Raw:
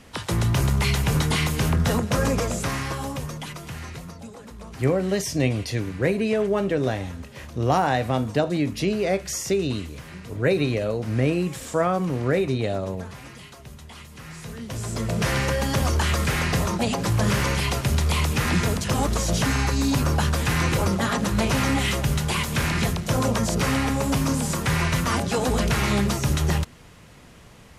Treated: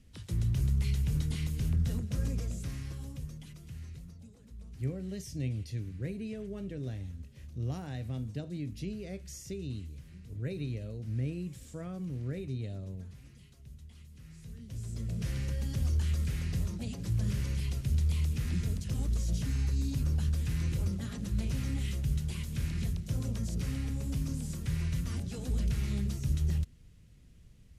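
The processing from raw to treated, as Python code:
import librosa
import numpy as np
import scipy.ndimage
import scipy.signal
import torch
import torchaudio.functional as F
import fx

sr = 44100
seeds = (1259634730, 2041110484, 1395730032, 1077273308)

y = fx.tone_stack(x, sr, knobs='10-0-1')
y = y * 10.0 ** (3.5 / 20.0)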